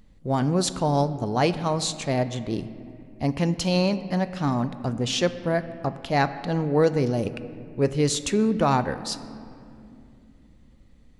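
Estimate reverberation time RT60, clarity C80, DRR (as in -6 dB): 2.6 s, 14.0 dB, 11.5 dB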